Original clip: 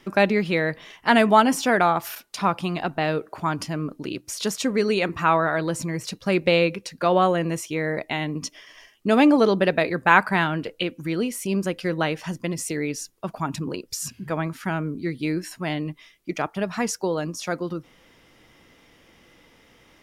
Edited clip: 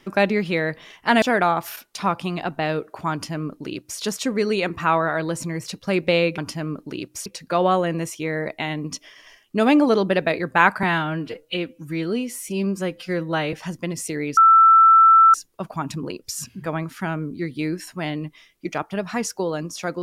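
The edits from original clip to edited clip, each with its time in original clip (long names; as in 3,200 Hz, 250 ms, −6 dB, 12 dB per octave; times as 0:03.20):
0:01.22–0:01.61: remove
0:03.51–0:04.39: duplicate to 0:06.77
0:10.34–0:12.14: time-stretch 1.5×
0:12.98: insert tone 1,330 Hz −8.5 dBFS 0.97 s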